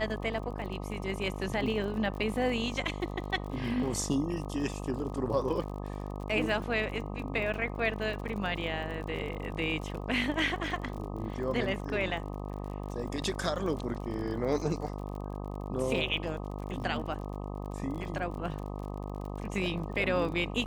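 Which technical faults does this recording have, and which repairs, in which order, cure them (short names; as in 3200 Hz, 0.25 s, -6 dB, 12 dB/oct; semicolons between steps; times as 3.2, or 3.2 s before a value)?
buzz 50 Hz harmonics 25 -38 dBFS
crackle 43/s -39 dBFS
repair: de-click; de-hum 50 Hz, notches 25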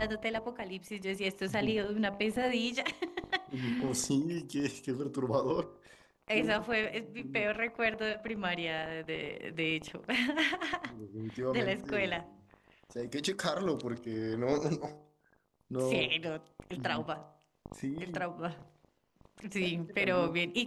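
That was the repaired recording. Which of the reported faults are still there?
none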